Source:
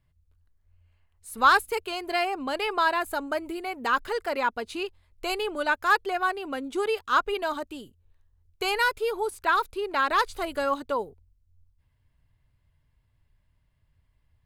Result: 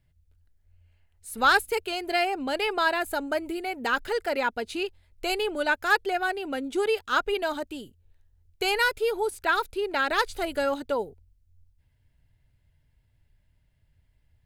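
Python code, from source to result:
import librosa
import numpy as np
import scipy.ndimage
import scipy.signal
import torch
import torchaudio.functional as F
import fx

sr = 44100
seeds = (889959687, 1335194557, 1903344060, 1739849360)

y = fx.peak_eq(x, sr, hz=1100.0, db=-13.0, octaves=0.27)
y = y * 10.0 ** (2.0 / 20.0)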